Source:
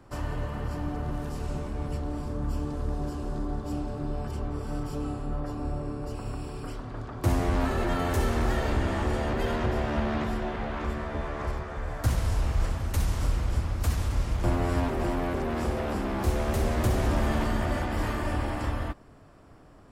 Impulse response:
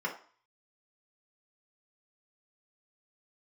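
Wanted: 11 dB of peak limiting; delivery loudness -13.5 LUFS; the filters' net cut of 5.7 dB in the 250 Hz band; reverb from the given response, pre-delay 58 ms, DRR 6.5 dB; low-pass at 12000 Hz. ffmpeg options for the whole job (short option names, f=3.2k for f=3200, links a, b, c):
-filter_complex "[0:a]lowpass=12k,equalizer=f=250:t=o:g=-7.5,alimiter=level_in=1.5dB:limit=-24dB:level=0:latency=1,volume=-1.5dB,asplit=2[a][b];[1:a]atrim=start_sample=2205,adelay=58[c];[b][c]afir=irnorm=-1:irlink=0,volume=-12.5dB[d];[a][d]amix=inputs=2:normalize=0,volume=22dB"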